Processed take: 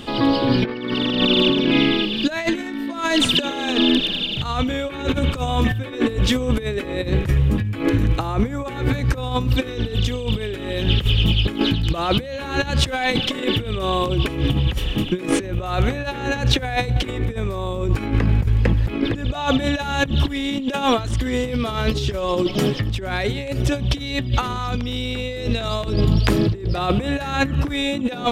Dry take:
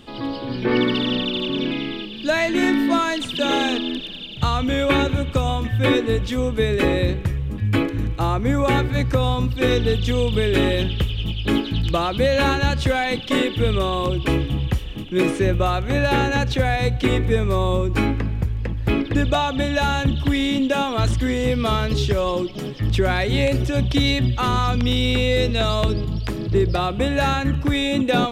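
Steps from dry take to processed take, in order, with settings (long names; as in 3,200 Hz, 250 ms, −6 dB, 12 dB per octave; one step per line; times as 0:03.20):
low-shelf EQ 120 Hz −3 dB
compressor whose output falls as the input rises −25 dBFS, ratio −0.5
level +5.5 dB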